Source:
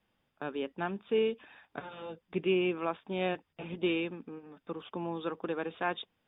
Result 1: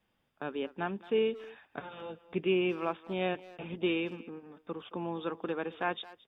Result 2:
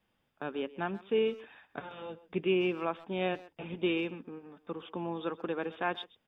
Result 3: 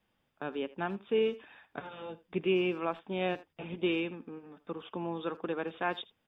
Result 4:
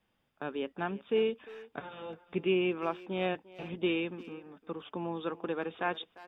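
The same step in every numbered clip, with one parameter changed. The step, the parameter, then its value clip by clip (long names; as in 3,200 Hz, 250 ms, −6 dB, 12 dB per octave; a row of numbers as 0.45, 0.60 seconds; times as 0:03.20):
far-end echo of a speakerphone, delay time: 220, 130, 80, 350 milliseconds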